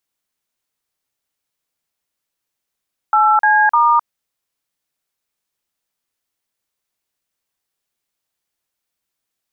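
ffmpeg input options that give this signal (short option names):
-f lavfi -i "aevalsrc='0.251*clip(min(mod(t,0.302),0.261-mod(t,0.302))/0.002,0,1)*(eq(floor(t/0.302),0)*(sin(2*PI*852*mod(t,0.302))+sin(2*PI*1336*mod(t,0.302)))+eq(floor(t/0.302),1)*(sin(2*PI*852*mod(t,0.302))+sin(2*PI*1633*mod(t,0.302)))+eq(floor(t/0.302),2)*(sin(2*PI*941*mod(t,0.302))+sin(2*PI*1209*mod(t,0.302))))':d=0.906:s=44100"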